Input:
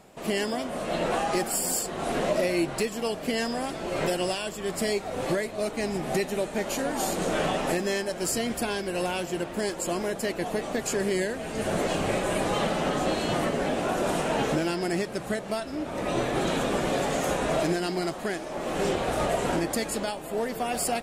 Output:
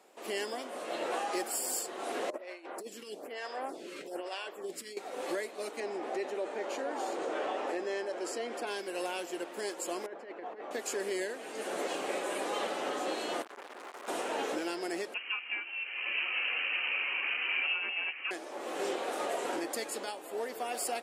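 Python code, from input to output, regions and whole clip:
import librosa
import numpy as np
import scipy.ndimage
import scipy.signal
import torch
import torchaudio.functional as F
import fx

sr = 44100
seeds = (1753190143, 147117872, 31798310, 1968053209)

y = fx.chain(x, sr, fx.high_shelf(hz=4700.0, db=-5.5),
    fx.over_compress(threshold_db=-29.0, ratio=-0.5),
    fx.stagger_phaser(hz=1.1), at=(2.3, 4.97))
y = fx.chain(y, sr, fx.bandpass_edges(low_hz=270.0, high_hz=7900.0),
    fx.high_shelf(hz=2400.0, db=-11.5),
    fx.env_flatten(amount_pct=50), at=(5.8, 8.67))
y = fx.chain(y, sr, fx.lowpass(hz=1600.0, slope=12),
    fx.low_shelf(hz=450.0, db=-6.5),
    fx.over_compress(threshold_db=-34.0, ratio=-0.5), at=(10.06, 10.71))
y = fx.chain(y, sr, fx.highpass(hz=50.0, slope=12),
    fx.overload_stage(gain_db=30.5),
    fx.transformer_sat(knee_hz=870.0), at=(13.42, 14.08))
y = fx.chain(y, sr, fx.resample_bad(factor=6, down='none', up='hold'),
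    fx.freq_invert(carrier_hz=3000), at=(15.14, 18.31))
y = scipy.signal.sosfilt(scipy.signal.butter(4, 310.0, 'highpass', fs=sr, output='sos'), y)
y = fx.notch(y, sr, hz=640.0, q=15.0)
y = y * librosa.db_to_amplitude(-6.5)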